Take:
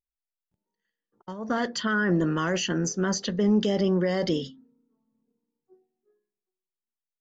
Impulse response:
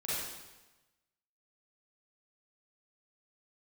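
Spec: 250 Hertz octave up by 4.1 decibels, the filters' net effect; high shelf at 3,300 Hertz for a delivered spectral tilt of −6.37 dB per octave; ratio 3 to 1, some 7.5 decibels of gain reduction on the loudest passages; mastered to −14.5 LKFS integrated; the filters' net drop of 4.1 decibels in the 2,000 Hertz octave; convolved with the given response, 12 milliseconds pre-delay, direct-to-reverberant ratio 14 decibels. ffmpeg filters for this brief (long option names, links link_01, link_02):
-filter_complex "[0:a]equalizer=frequency=250:width_type=o:gain=6,equalizer=frequency=2000:width_type=o:gain=-4,highshelf=frequency=3300:gain=-8.5,acompressor=threshold=-24dB:ratio=3,asplit=2[link_01][link_02];[1:a]atrim=start_sample=2205,adelay=12[link_03];[link_02][link_03]afir=irnorm=-1:irlink=0,volume=-19dB[link_04];[link_01][link_04]amix=inputs=2:normalize=0,volume=13.5dB"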